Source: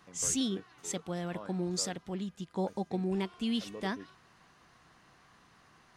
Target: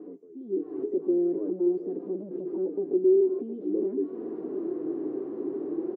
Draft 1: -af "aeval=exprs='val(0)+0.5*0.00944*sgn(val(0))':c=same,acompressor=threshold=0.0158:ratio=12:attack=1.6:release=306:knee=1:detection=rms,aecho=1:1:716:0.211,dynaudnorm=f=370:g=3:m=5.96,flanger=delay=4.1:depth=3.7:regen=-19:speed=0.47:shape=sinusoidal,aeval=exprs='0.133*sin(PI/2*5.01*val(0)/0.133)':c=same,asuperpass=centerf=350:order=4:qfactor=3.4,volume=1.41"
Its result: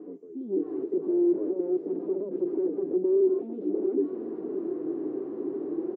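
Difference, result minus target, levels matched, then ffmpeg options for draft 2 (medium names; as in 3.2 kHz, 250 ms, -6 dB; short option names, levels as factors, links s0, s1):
compression: peak gain reduction -5.5 dB
-af "aeval=exprs='val(0)+0.5*0.00944*sgn(val(0))':c=same,acompressor=threshold=0.00794:ratio=12:attack=1.6:release=306:knee=1:detection=rms,aecho=1:1:716:0.211,dynaudnorm=f=370:g=3:m=5.96,flanger=delay=4.1:depth=3.7:regen=-19:speed=0.47:shape=sinusoidal,aeval=exprs='0.133*sin(PI/2*5.01*val(0)/0.133)':c=same,asuperpass=centerf=350:order=4:qfactor=3.4,volume=1.41"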